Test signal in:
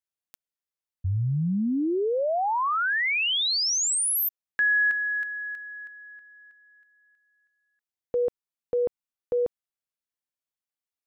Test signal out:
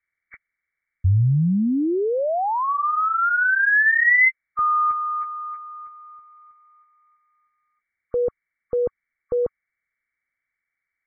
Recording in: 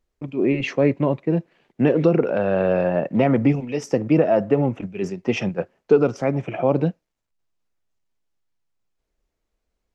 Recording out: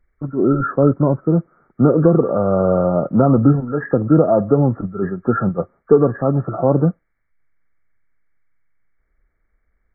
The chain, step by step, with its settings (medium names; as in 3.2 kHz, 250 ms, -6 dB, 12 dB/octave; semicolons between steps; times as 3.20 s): knee-point frequency compression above 1.1 kHz 4:1; bass shelf 130 Hz +10.5 dB; trim +2.5 dB